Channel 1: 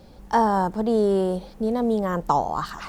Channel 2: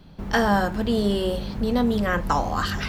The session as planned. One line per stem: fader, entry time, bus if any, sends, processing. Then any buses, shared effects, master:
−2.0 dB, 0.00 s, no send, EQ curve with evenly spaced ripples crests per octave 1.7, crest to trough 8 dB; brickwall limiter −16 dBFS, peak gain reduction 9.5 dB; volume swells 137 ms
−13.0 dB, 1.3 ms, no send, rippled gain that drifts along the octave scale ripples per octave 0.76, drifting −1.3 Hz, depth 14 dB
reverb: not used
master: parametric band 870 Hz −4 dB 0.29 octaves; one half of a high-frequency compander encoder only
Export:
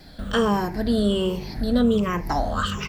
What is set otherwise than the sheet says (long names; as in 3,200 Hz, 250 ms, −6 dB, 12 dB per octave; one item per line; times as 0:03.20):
stem 1 −2.0 dB → −8.0 dB
stem 2 −13.0 dB → −3.0 dB